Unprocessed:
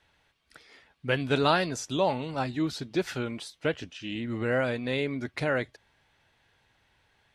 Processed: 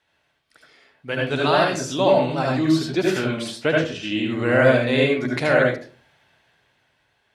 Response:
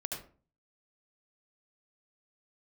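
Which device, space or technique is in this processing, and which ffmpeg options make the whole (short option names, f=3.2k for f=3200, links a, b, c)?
far laptop microphone: -filter_complex "[1:a]atrim=start_sample=2205[a];[0:a][a]afir=irnorm=-1:irlink=0,highpass=f=170:p=1,dynaudnorm=f=290:g=11:m=11dB"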